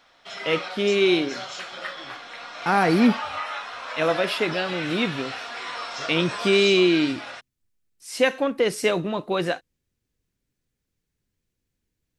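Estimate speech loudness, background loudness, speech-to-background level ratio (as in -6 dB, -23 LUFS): -22.5 LUFS, -32.5 LUFS, 10.0 dB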